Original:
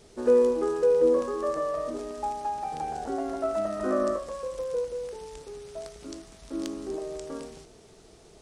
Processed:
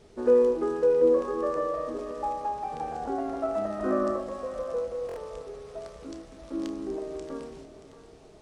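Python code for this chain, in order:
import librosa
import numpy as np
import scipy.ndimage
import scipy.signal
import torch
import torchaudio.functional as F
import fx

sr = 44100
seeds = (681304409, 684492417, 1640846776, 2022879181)

y = fx.high_shelf(x, sr, hz=4200.0, db=-11.0)
y = fx.doubler(y, sr, ms=30.0, db=-11.5)
y = fx.echo_split(y, sr, split_hz=540.0, low_ms=271, high_ms=628, feedback_pct=52, wet_db=-13.0)
y = fx.buffer_glitch(y, sr, at_s=(5.07,), block=1024, repeats=3)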